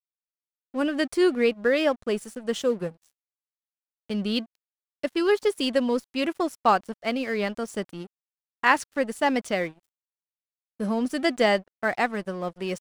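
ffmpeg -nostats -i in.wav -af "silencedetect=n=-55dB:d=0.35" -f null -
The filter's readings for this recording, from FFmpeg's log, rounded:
silence_start: 0.00
silence_end: 0.74 | silence_duration: 0.74
silence_start: 3.11
silence_end: 4.10 | silence_duration: 0.98
silence_start: 4.55
silence_end: 5.03 | silence_duration: 0.48
silence_start: 8.07
silence_end: 8.63 | silence_duration: 0.56
silence_start: 9.85
silence_end: 10.80 | silence_duration: 0.94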